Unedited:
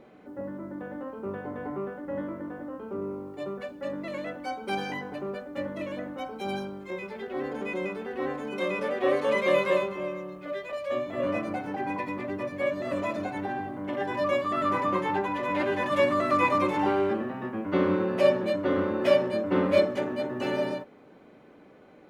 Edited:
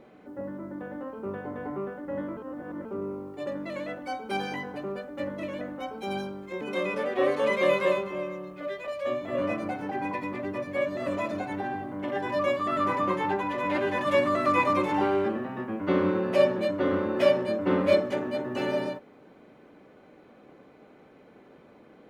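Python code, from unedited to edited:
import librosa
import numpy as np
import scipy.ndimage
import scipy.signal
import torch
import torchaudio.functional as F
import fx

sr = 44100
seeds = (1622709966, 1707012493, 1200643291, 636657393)

y = fx.edit(x, sr, fx.reverse_span(start_s=2.37, length_s=0.48),
    fx.cut(start_s=3.47, length_s=0.38),
    fx.cut(start_s=6.99, length_s=1.47), tone=tone)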